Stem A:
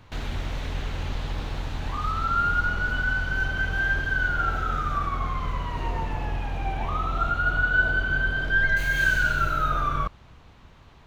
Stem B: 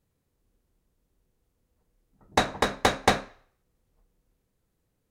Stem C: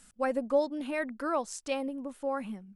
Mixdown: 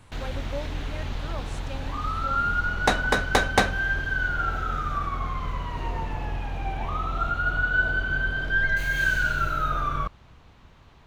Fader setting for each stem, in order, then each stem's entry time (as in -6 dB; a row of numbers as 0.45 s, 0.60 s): -1.5 dB, +0.5 dB, -9.0 dB; 0.00 s, 0.50 s, 0.00 s